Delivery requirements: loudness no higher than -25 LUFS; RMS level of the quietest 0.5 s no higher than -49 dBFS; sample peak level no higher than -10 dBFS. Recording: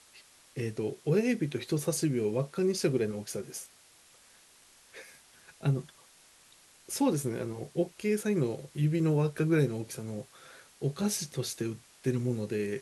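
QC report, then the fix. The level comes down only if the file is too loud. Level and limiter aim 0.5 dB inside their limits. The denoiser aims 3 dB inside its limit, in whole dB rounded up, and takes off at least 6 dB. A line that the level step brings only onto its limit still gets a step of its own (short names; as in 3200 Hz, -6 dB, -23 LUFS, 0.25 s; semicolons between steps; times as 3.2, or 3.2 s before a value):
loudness -31.5 LUFS: OK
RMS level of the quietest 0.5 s -60 dBFS: OK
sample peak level -15.5 dBFS: OK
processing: none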